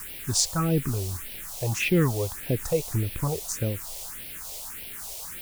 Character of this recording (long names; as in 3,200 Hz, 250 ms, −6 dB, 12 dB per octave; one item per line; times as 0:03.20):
a quantiser's noise floor 6 bits, dither triangular
phaser sweep stages 4, 1.7 Hz, lowest notch 240–1,200 Hz